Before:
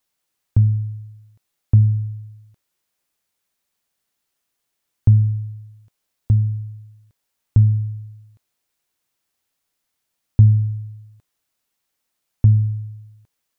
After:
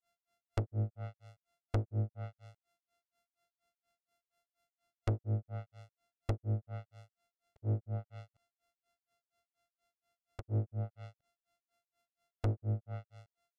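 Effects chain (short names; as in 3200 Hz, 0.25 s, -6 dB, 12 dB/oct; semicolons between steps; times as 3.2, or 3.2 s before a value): sample sorter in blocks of 64 samples; tube stage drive 27 dB, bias 0.6; treble ducked by the level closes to 370 Hz, closed at -27.5 dBFS; grains 0.192 s, grains 4.2/s, spray 12 ms, pitch spread up and down by 0 st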